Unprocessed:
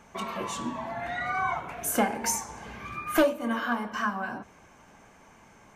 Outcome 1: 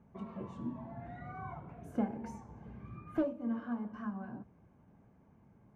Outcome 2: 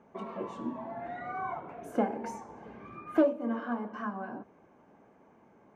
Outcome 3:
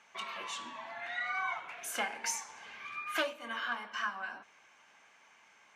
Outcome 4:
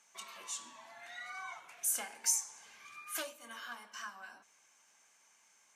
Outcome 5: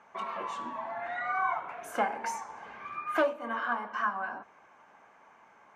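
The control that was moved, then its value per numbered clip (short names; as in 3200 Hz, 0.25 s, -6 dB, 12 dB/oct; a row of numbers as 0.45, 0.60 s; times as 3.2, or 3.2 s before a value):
band-pass, frequency: 120, 360, 2900, 7800, 1100 Hz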